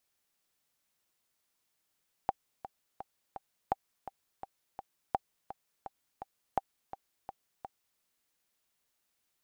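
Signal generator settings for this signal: metronome 168 bpm, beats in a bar 4, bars 4, 783 Hz, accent 13.5 dB -14.5 dBFS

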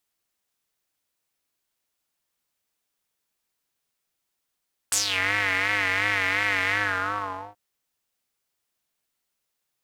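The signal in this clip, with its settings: synth patch with vibrato G2, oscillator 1 square, detune 23 cents, noise -14 dB, filter bandpass, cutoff 770 Hz, Q 4.3, filter envelope 3.5 oct, attack 2.4 ms, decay 0.12 s, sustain -8 dB, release 0.84 s, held 1.79 s, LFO 2.8 Hz, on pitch 85 cents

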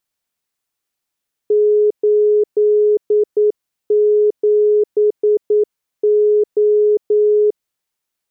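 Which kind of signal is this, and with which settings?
Morse "87O" 9 wpm 420 Hz -9.5 dBFS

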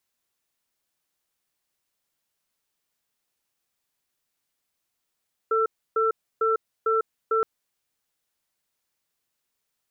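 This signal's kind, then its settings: cadence 445 Hz, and 1.34 kHz, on 0.15 s, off 0.30 s, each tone -22 dBFS 1.92 s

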